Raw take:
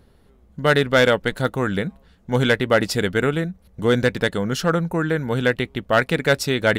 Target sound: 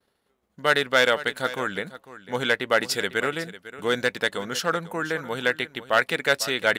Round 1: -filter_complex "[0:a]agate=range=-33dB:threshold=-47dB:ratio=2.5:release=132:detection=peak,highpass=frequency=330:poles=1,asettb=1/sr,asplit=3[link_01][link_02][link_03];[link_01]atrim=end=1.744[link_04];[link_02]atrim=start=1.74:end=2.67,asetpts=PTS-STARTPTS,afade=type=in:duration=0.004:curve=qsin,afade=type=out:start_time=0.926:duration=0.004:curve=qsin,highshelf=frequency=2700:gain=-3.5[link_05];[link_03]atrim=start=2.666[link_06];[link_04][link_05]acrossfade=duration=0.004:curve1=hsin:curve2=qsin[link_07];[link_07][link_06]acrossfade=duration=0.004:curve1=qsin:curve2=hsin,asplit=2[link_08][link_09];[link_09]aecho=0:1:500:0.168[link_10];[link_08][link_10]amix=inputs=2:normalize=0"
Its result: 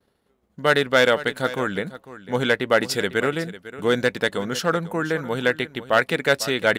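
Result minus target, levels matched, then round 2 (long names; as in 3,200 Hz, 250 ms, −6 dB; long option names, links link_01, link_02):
250 Hz band +4.0 dB
-filter_complex "[0:a]agate=range=-33dB:threshold=-47dB:ratio=2.5:release=132:detection=peak,highpass=frequency=850:poles=1,asettb=1/sr,asplit=3[link_01][link_02][link_03];[link_01]atrim=end=1.744[link_04];[link_02]atrim=start=1.74:end=2.67,asetpts=PTS-STARTPTS,afade=type=in:duration=0.004:curve=qsin,afade=type=out:start_time=0.926:duration=0.004:curve=qsin,highshelf=frequency=2700:gain=-3.5[link_05];[link_03]atrim=start=2.666[link_06];[link_04][link_05]acrossfade=duration=0.004:curve1=hsin:curve2=qsin[link_07];[link_07][link_06]acrossfade=duration=0.004:curve1=qsin:curve2=hsin,asplit=2[link_08][link_09];[link_09]aecho=0:1:500:0.168[link_10];[link_08][link_10]amix=inputs=2:normalize=0"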